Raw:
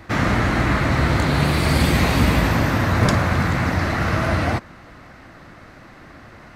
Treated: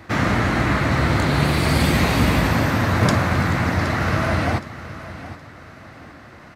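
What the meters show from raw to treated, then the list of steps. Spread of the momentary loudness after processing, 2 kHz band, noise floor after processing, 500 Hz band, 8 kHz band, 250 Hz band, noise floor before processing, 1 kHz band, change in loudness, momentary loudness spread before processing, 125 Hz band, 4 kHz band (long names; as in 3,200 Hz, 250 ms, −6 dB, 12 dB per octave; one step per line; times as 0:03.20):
17 LU, 0.0 dB, −43 dBFS, 0.0 dB, 0.0 dB, 0.0 dB, −44 dBFS, 0.0 dB, 0.0 dB, 4 LU, −0.5 dB, 0.0 dB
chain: high-pass filter 61 Hz
repeating echo 769 ms, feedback 32%, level −15 dB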